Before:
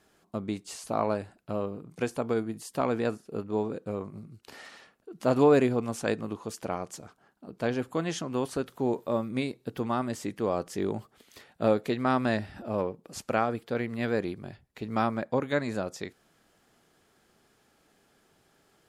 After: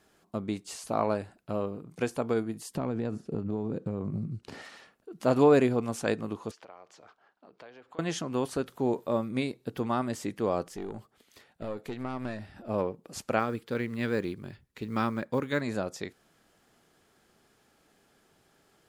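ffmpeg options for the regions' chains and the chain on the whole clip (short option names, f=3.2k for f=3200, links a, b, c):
-filter_complex "[0:a]asettb=1/sr,asplit=3[a][b][c];[a]atrim=end=2.754[d];[b]atrim=start=2.75:end=4.62,asetpts=PTS-STARTPTS,afade=t=in:d=0.004:c=qsin,afade=t=out:st=1.866:d=0.004:c=qsin,lowpass=8.6k,equalizer=f=130:w=0.38:g=13,acompressor=threshold=-27dB:ratio=8:attack=3.2:release=140:knee=1:detection=peak[e];[c]atrim=start=4.616[f];[d][e]acrossfade=d=0.004:c1=hsin:c2=qsin[g];[g][f]acrossfade=d=0.004:c1=qsin:c2=hsin,asettb=1/sr,asplit=3[h][i][j];[h]atrim=end=6.514[k];[i]atrim=start=6.51:end=7.99,asetpts=PTS-STARTPTS,afade=t=in:d=0.004:c=qsin,afade=t=out:st=1.476:d=0.004:c=qsin,acompressor=threshold=-43dB:ratio=5:attack=3.2:release=140:knee=1:detection=peak,acrossover=split=420 5200:gain=0.158 1 0.0631[l][m][n];[l][m][n]amix=inputs=3:normalize=0[o];[j]atrim=start=7.986[p];[k][o]acrossfade=d=0.004:c1=hsin:c2=qsin[q];[q][p]acrossfade=d=0.004:c1=qsin:c2=hsin,asettb=1/sr,asplit=3[r][s][t];[r]atrim=end=10.694[u];[s]atrim=start=10.69:end=12.69,asetpts=PTS-STARTPTS,afade=t=in:d=0.004:c=qsin,afade=t=out:st=1.996:d=0.004:c=qsin,acompressor=threshold=-27dB:ratio=2.5:attack=3.2:release=140:knee=1:detection=peak,aeval=exprs='(tanh(11.2*val(0)+0.8)-tanh(0.8))/11.2':c=same[v];[t]atrim=start=12.686[w];[u][v]acrossfade=d=0.004:c1=hsin:c2=qsin[x];[x][w]acrossfade=d=0.004:c1=qsin:c2=hsin,asettb=1/sr,asplit=3[y][z][aa];[y]atrim=end=13.394[ab];[z]atrim=start=13.39:end=15.61,asetpts=PTS-STARTPTS,afade=t=in:d=0.004:c=qsin,afade=t=out:st=2.216:d=0.004:c=qsin,equalizer=f=700:w=3:g=-10,acrusher=bits=9:mode=log:mix=0:aa=0.000001[ac];[aa]atrim=start=15.606[ad];[ab][ac]acrossfade=d=0.004:c1=hsin:c2=qsin[ae];[ae][ad]acrossfade=d=0.004:c1=qsin:c2=hsin"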